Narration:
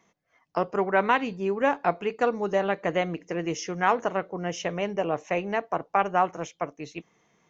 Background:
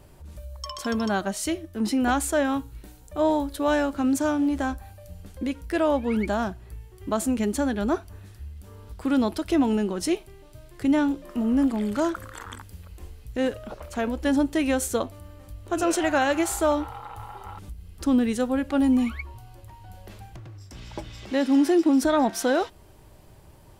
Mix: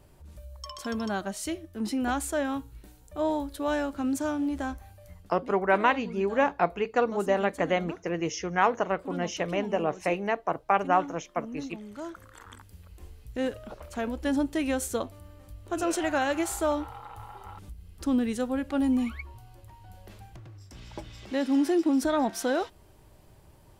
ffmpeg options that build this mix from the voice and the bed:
-filter_complex "[0:a]adelay=4750,volume=0.944[s0];[1:a]volume=2.11,afade=t=out:st=5.09:d=0.25:silence=0.281838,afade=t=in:st=11.89:d=1.27:silence=0.251189[s1];[s0][s1]amix=inputs=2:normalize=0"

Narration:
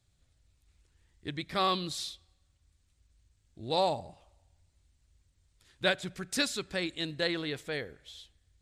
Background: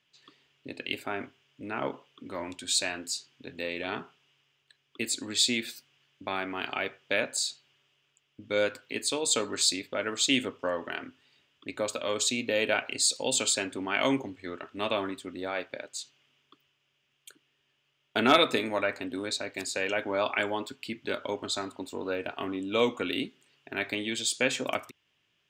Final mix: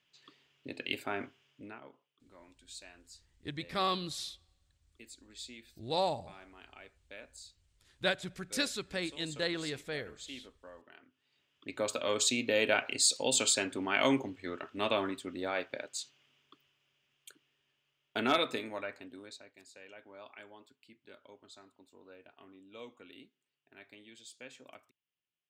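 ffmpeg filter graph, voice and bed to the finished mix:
-filter_complex "[0:a]adelay=2200,volume=0.708[s0];[1:a]volume=7.5,afade=t=out:st=1.48:d=0.32:silence=0.112202,afade=t=in:st=11.1:d=0.86:silence=0.1,afade=t=out:st=16.8:d=2.76:silence=0.0841395[s1];[s0][s1]amix=inputs=2:normalize=0"

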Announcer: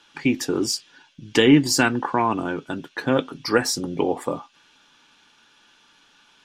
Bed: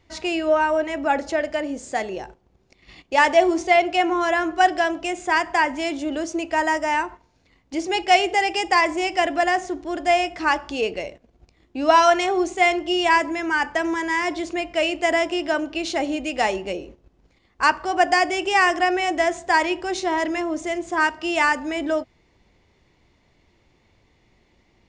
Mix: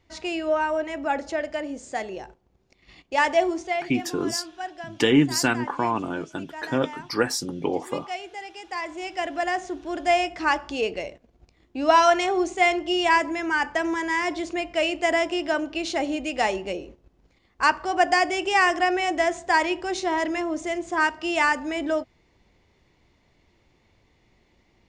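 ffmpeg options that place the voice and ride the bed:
-filter_complex "[0:a]adelay=3650,volume=0.668[s0];[1:a]volume=3.35,afade=t=out:st=3.4:d=0.54:silence=0.237137,afade=t=in:st=8.62:d=1.46:silence=0.177828[s1];[s0][s1]amix=inputs=2:normalize=0"

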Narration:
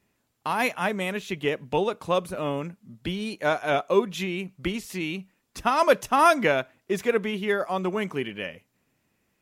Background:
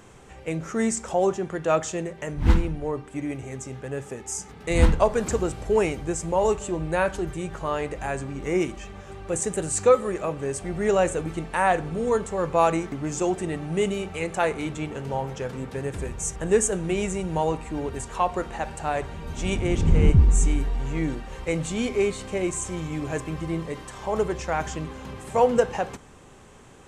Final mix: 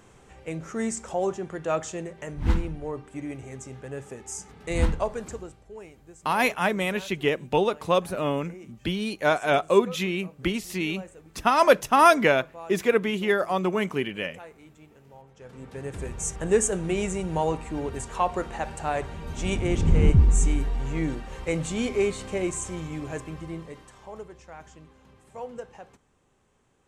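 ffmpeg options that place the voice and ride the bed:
-filter_complex "[0:a]adelay=5800,volume=1.26[s0];[1:a]volume=6.31,afade=t=out:st=4.76:d=0.87:silence=0.141254,afade=t=in:st=15.34:d=0.87:silence=0.0944061,afade=t=out:st=22.32:d=1.96:silence=0.141254[s1];[s0][s1]amix=inputs=2:normalize=0"

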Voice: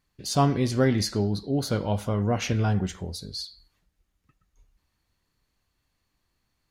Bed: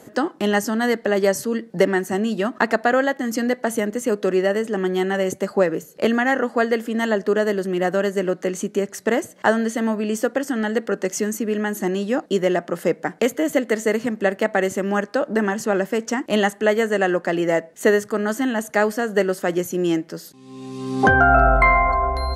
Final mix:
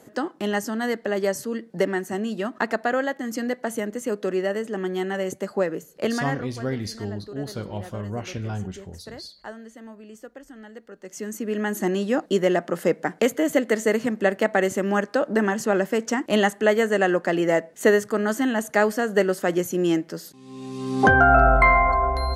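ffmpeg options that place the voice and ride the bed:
-filter_complex "[0:a]adelay=5850,volume=0.501[s0];[1:a]volume=5.01,afade=t=out:st=6.09:d=0.45:silence=0.177828,afade=t=in:st=11.01:d=0.75:silence=0.105925[s1];[s0][s1]amix=inputs=2:normalize=0"

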